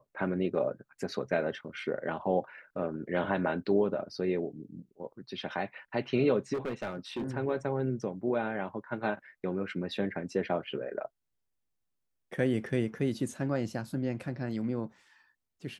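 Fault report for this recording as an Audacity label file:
6.530000	7.240000	clipping −30 dBFS

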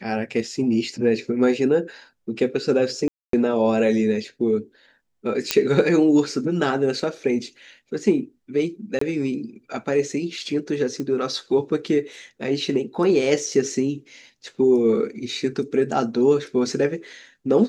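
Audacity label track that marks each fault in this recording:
3.080000	3.330000	drop-out 253 ms
5.510000	5.510000	click −1 dBFS
8.990000	9.010000	drop-out 24 ms
11.000000	11.000000	click −18 dBFS

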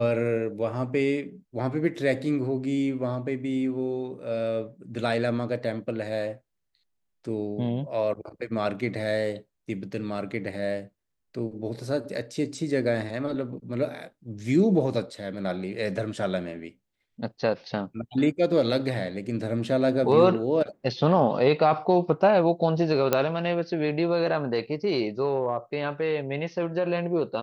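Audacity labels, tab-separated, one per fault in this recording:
23.130000	23.130000	click −7 dBFS

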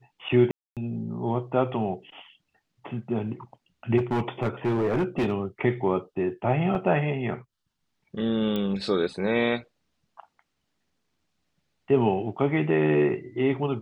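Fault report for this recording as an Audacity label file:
0.510000	0.770000	drop-out 257 ms
3.970000	5.320000	clipping −20.5 dBFS
6.750000	6.750000	drop-out 3.6 ms
8.560000	8.560000	click −17 dBFS

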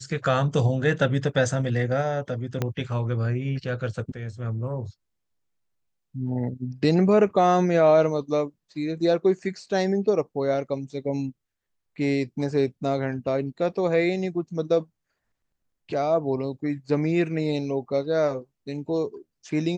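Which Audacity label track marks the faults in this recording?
2.620000	2.620000	click −12 dBFS

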